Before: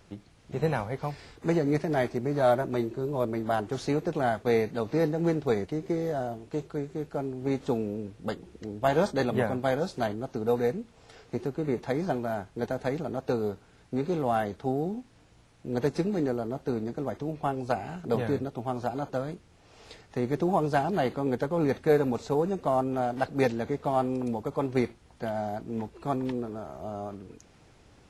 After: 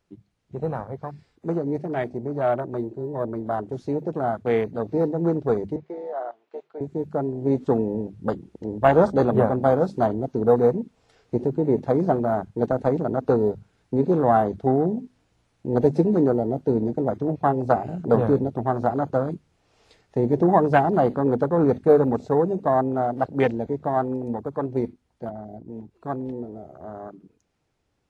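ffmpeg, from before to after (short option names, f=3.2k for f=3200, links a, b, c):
-filter_complex "[0:a]asettb=1/sr,asplit=3[a][b][c];[a]atrim=end=5.764[d];[b]atrim=start=5.76:end=6.81,asetpts=PTS-STARTPTS,afade=t=in:d=0.004:c=qsin,afade=t=out:st=1.046:d=0.004:c=qsin,highpass=670,lowpass=3.1k[e];[c]atrim=start=6.806[f];[d][e]acrossfade=d=0.004:c1=hsin:c2=qsin[g];[g][f]acrossfade=d=0.004:c1=qsin:c2=hsin,asettb=1/sr,asplit=3[h][i][j];[h]atrim=end=25.294[k];[i]atrim=start=25.29:end=25.91,asetpts=PTS-STARTPTS,afade=t=in:d=0.004:c=qsin,afade=t=out:st=0.616:d=0.004:c=qsin,acrossover=split=530|1300[l][m][n];[l]acompressor=threshold=-35dB:ratio=4[o];[m]acompressor=threshold=-46dB:ratio=4[p];[n]acompressor=threshold=-59dB:ratio=4[q];[o][p][q]amix=inputs=3:normalize=0[r];[j]atrim=start=25.906[s];[k][r]acrossfade=d=0.004:c1=hsin:c2=qsin[t];[t][s]acrossfade=d=0.004:c1=qsin:c2=hsin,bandreject=f=50:t=h:w=6,bandreject=f=100:t=h:w=6,bandreject=f=150:t=h:w=6,bandreject=f=200:t=h:w=6,bandreject=f=250:t=h:w=6,afwtdn=0.0224,dynaudnorm=f=390:g=31:m=11.5dB"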